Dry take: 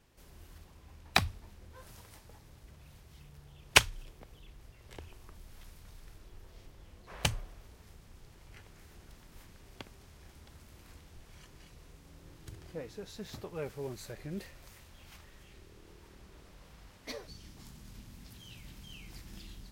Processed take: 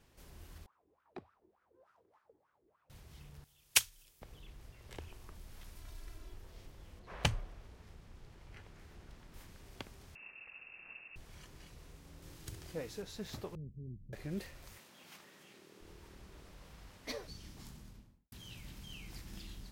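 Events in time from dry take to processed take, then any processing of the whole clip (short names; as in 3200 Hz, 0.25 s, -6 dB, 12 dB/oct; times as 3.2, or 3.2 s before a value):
0.66–2.9 wah 3.4 Hz 340–1400 Hz, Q 7.2
3.44–4.22 pre-emphasis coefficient 0.9
5.75–6.34 comb 3 ms
6.99–9.34 LPF 3700 Hz 6 dB/oct
10.15–11.16 inverted band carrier 2700 Hz
12.22–13.02 high shelf 3300 Hz +7.5 dB
13.55–14.13 inverse Chebyshev low-pass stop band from 1400 Hz, stop band 80 dB
14.78–15.81 HPF 170 Hz 24 dB/oct
17.64–18.32 studio fade out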